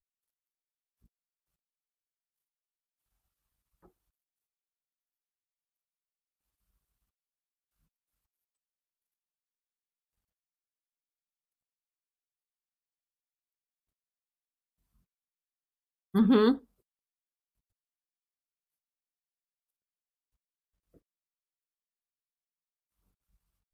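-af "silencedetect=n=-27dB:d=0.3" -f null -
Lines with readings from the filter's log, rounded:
silence_start: 0.00
silence_end: 16.15 | silence_duration: 16.15
silence_start: 16.54
silence_end: 23.74 | silence_duration: 7.20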